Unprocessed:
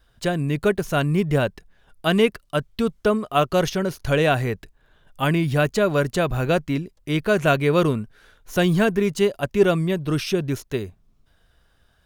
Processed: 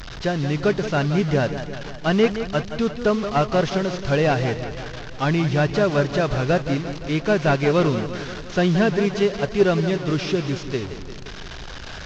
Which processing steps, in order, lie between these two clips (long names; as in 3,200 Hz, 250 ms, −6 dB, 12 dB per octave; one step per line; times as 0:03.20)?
linear delta modulator 32 kbit/s, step −29 dBFS
feedback echo with a swinging delay time 174 ms, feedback 61%, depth 96 cents, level −10.5 dB